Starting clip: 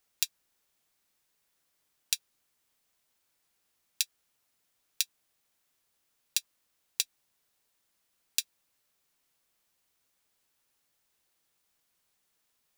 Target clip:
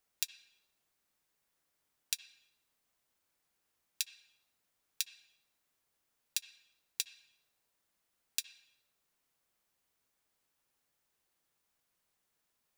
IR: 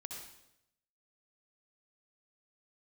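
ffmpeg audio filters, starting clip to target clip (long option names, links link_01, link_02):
-filter_complex "[0:a]asplit=2[link_01][link_02];[1:a]atrim=start_sample=2205,lowpass=2600[link_03];[link_02][link_03]afir=irnorm=-1:irlink=0,volume=-2.5dB[link_04];[link_01][link_04]amix=inputs=2:normalize=0,volume=-5.5dB"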